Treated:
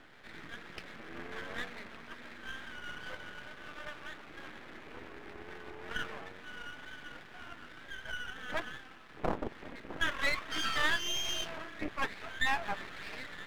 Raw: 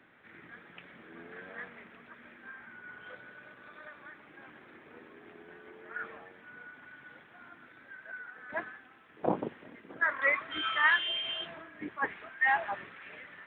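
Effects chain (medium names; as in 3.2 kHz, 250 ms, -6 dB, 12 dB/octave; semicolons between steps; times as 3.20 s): compression 2:1, threshold -39 dBFS, peak gain reduction 10 dB; half-wave rectifier; wow and flutter 29 cents; trim +8.5 dB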